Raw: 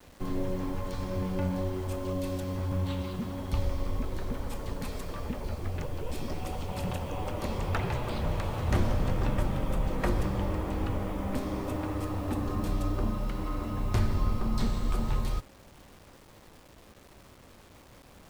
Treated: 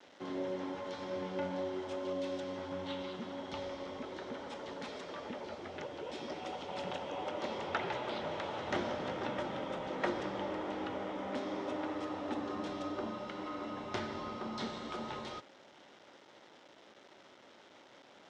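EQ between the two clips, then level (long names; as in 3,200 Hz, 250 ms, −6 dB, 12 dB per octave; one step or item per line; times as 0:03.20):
loudspeaker in its box 450–5,000 Hz, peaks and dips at 480 Hz −5 dB, 720 Hz −4 dB, 1,100 Hz −9 dB, 1,700 Hz −4 dB, 2,500 Hz −7 dB, 4,500 Hz −8 dB
+3.5 dB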